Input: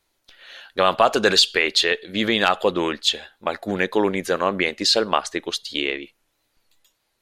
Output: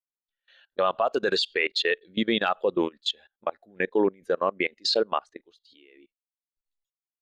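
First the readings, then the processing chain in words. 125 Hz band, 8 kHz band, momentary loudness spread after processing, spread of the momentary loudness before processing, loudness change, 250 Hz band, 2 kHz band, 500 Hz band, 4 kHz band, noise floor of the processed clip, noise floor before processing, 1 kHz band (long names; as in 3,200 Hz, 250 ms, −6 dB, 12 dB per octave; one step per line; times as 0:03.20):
−9.5 dB, −16.0 dB, 8 LU, 11 LU, −6.0 dB, −5.0 dB, −7.0 dB, −4.0 dB, −9.0 dB, below −85 dBFS, −72 dBFS, −7.0 dB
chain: output level in coarse steps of 22 dB
every bin expanded away from the loudest bin 1.5 to 1
level −2.5 dB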